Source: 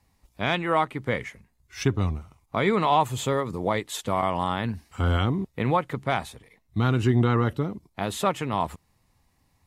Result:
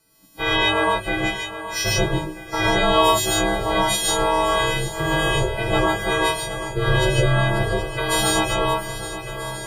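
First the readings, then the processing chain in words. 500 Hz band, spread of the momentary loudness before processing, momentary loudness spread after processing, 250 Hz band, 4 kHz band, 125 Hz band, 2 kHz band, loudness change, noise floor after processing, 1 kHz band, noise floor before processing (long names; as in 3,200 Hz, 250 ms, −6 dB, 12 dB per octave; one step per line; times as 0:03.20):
+6.0 dB, 11 LU, 9 LU, +2.0 dB, +13.5 dB, +1.5 dB, +11.0 dB, +5.5 dB, −37 dBFS, +5.0 dB, −69 dBFS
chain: every partial snapped to a pitch grid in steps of 4 semitones
camcorder AGC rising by 13 dB per second
ring modulation 240 Hz
feedback echo with a long and a short gap by turns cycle 1,286 ms, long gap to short 1.5 to 1, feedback 48%, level −12.5 dB
reverb whose tail is shaped and stops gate 170 ms rising, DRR −3.5 dB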